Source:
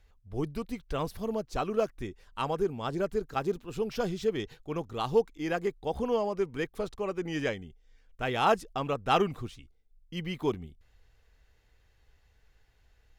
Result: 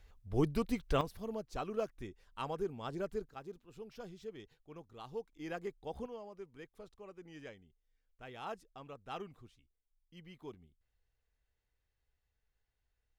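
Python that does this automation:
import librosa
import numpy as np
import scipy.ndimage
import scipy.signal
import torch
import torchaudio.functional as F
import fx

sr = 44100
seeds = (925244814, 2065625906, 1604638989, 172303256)

y = fx.gain(x, sr, db=fx.steps((0.0, 1.5), (1.01, -8.5), (3.29, -17.5), (5.33, -11.0), (6.06, -19.0)))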